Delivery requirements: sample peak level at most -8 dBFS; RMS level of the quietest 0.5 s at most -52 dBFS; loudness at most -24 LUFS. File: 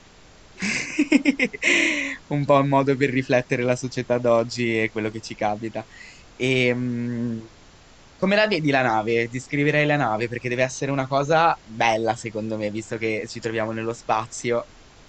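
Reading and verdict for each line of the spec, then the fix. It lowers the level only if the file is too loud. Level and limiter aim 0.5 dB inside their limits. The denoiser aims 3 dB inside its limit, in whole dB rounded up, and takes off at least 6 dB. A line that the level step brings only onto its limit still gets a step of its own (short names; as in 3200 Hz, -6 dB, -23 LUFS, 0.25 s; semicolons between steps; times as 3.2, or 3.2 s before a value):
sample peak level -5.5 dBFS: fail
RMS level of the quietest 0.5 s -50 dBFS: fail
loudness -22.5 LUFS: fail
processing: denoiser 6 dB, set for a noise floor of -50 dBFS; gain -2 dB; limiter -8.5 dBFS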